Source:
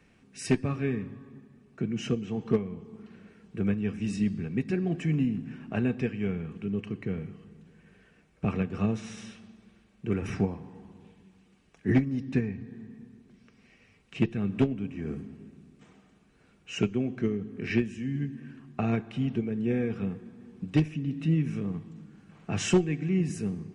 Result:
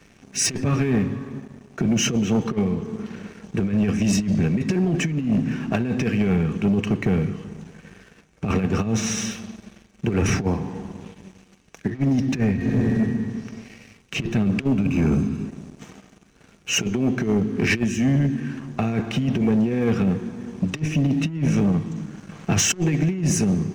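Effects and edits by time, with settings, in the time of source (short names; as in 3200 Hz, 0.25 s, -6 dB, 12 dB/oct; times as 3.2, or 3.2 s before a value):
12.56–12.99 reverb throw, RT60 1.7 s, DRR -10.5 dB
14.78–15.46 comb 0.8 ms, depth 83%
whole clip: bell 6100 Hz +10.5 dB 0.29 oct; negative-ratio compressor -30 dBFS, ratio -0.5; sample leveller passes 2; gain +5 dB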